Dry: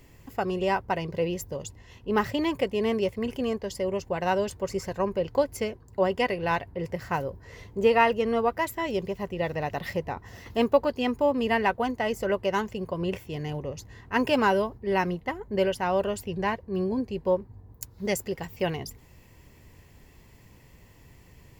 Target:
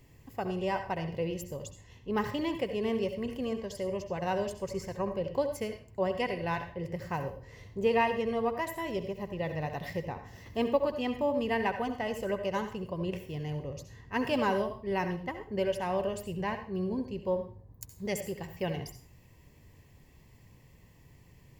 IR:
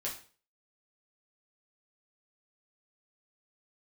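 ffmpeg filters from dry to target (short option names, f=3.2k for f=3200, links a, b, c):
-filter_complex "[0:a]equalizer=f=130:w=1.5:g=5,bandreject=f=1.4k:w=7.6,asplit=2[a][b];[1:a]atrim=start_sample=2205,adelay=66[c];[b][c]afir=irnorm=-1:irlink=0,volume=-10dB[d];[a][d]amix=inputs=2:normalize=0,volume=-6.5dB"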